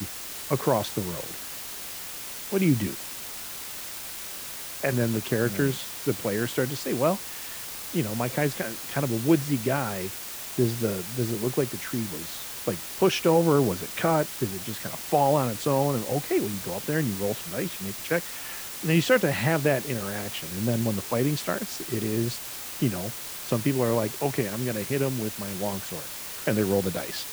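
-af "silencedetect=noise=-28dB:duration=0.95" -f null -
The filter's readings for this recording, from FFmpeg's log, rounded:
silence_start: 1.34
silence_end: 2.52 | silence_duration: 1.18
silence_start: 2.93
silence_end: 4.83 | silence_duration: 1.91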